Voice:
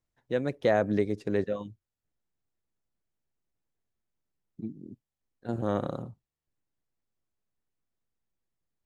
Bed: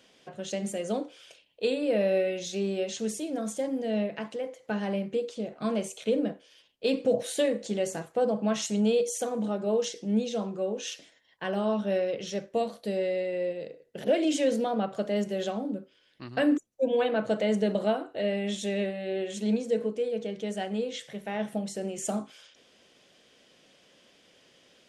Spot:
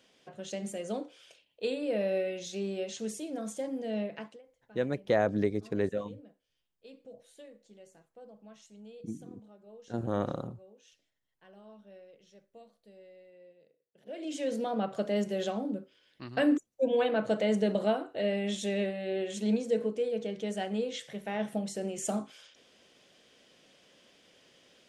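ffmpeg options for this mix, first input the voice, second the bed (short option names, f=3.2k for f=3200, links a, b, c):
-filter_complex "[0:a]adelay=4450,volume=-2dB[a];[1:a]volume=19dB,afade=t=out:st=4.17:d=0.25:silence=0.0944061,afade=t=in:st=14.04:d=0.88:silence=0.0630957[b];[a][b]amix=inputs=2:normalize=0"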